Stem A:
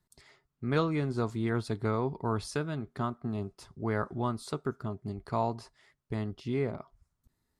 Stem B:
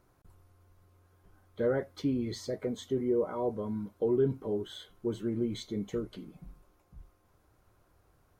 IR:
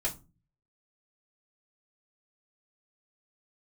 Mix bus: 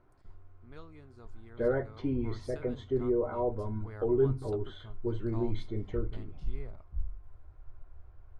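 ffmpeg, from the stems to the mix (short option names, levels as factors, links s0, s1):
-filter_complex "[0:a]volume=0.168,afade=t=in:st=1.94:d=0.59:silence=0.446684[s0];[1:a]lowpass=2200,volume=0.944,asplit=2[s1][s2];[s2]volume=0.224[s3];[2:a]atrim=start_sample=2205[s4];[s3][s4]afir=irnorm=-1:irlink=0[s5];[s0][s1][s5]amix=inputs=3:normalize=0,asubboost=boost=11:cutoff=61"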